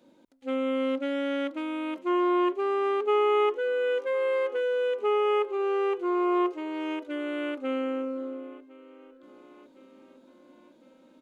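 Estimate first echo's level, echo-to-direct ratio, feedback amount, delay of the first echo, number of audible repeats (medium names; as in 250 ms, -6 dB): -22.5 dB, -21.0 dB, 58%, 1058 ms, 3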